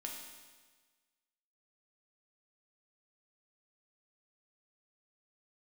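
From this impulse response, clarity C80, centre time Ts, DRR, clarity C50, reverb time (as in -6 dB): 4.5 dB, 58 ms, -1.0 dB, 2.5 dB, 1.4 s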